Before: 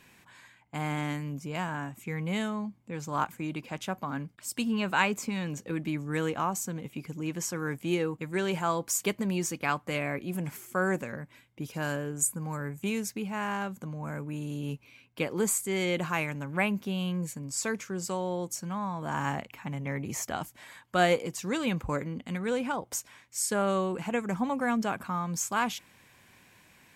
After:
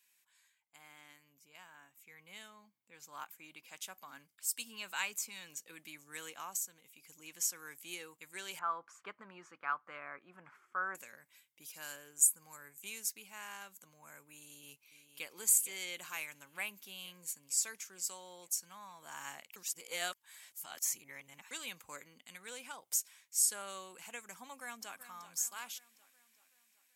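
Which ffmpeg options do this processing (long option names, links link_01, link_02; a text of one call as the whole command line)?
ffmpeg -i in.wav -filter_complex "[0:a]asettb=1/sr,asplit=3[link_01][link_02][link_03];[link_01]atrim=end=0.764[link_04];[link_02]atrim=start=0.76:end=3.66,asetpts=PTS-STARTPTS,afade=type=in:duration=0.004:curve=qsin,afade=type=out:start_time=2.896:duration=0.004:curve=qsin,equalizer=frequency=8500:width_type=o:width=1.6:gain=-8[link_05];[link_03]atrim=start=3.656[link_06];[link_04][link_05]acrossfade=duration=0.004:curve1=hsin:curve2=qsin[link_07];[link_07][link_06]acrossfade=duration=0.004:curve1=qsin:curve2=hsin,asettb=1/sr,asplit=3[link_08][link_09][link_10];[link_08]atrim=end=8.594[link_11];[link_09]atrim=start=8.59:end=10.95,asetpts=PTS-STARTPTS,afade=type=in:duration=0.004:curve=qsin,afade=type=out:start_time=2.356:duration=0.004:curve=qsin,lowpass=frequency=1300:width_type=q:width=3.9[link_12];[link_10]atrim=start=10.946[link_13];[link_11][link_12]acrossfade=duration=0.004:curve1=hsin:curve2=qsin[link_14];[link_14][link_13]acrossfade=duration=0.004:curve1=qsin:curve2=hsin,asplit=2[link_15][link_16];[link_16]afade=type=in:start_time=14.45:duration=0.01,afade=type=out:start_time=15.33:duration=0.01,aecho=0:1:460|920|1380|1840|2300|2760|3220|3680|4140|4600:0.316228|0.221359|0.154952|0.108466|0.0759263|0.0531484|0.0372039|0.0260427|0.0182299|0.0127609[link_17];[link_15][link_17]amix=inputs=2:normalize=0,asplit=2[link_18][link_19];[link_19]afade=type=in:start_time=24.43:duration=0.01,afade=type=out:start_time=24.99:duration=0.01,aecho=0:1:380|760|1140|1520|1900|2280|2660|3040:0.251189|0.163273|0.106127|0.0689827|0.0448387|0.0291452|0.0189444|0.0123138[link_20];[link_18][link_20]amix=inputs=2:normalize=0,asplit=5[link_21][link_22][link_23][link_24][link_25];[link_21]atrim=end=6.572[link_26];[link_22]atrim=start=6.568:end=7.062,asetpts=PTS-STARTPTS,volume=-4.5dB[link_27];[link_23]atrim=start=7.058:end=19.562[link_28];[link_24]atrim=start=19.558:end=21.512,asetpts=PTS-STARTPTS,areverse[link_29];[link_25]atrim=start=21.508[link_30];[link_26][link_27]acrossfade=duration=0.004:curve1=hsin:curve2=hsin[link_31];[link_31][link_28]acrossfade=duration=0.004:curve1=hsin:curve2=hsin[link_32];[link_32][link_29]acrossfade=duration=0.004:curve1=hsin:curve2=hsin[link_33];[link_33][link_30]acrossfade=duration=0.004:curve1=hsin:curve2=hsin,aderivative,dynaudnorm=framelen=560:gausssize=9:maxgain=9.5dB,volume=-8.5dB" out.wav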